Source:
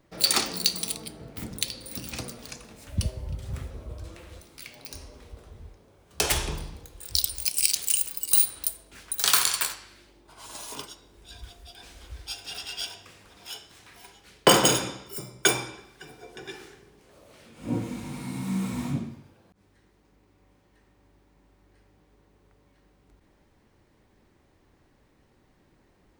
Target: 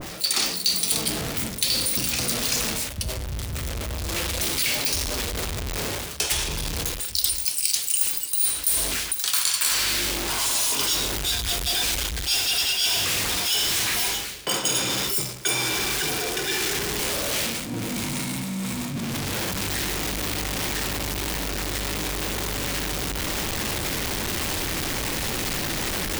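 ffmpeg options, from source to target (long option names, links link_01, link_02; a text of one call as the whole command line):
ffmpeg -i in.wav -af "aeval=exprs='val(0)+0.5*0.0398*sgn(val(0))':channel_layout=same,areverse,acompressor=threshold=-33dB:ratio=6,areverse,adynamicequalizer=threshold=0.00224:dfrequency=1800:dqfactor=0.7:tfrequency=1800:tqfactor=0.7:attack=5:release=100:ratio=0.375:range=4:mode=boostabove:tftype=highshelf,volume=4.5dB" out.wav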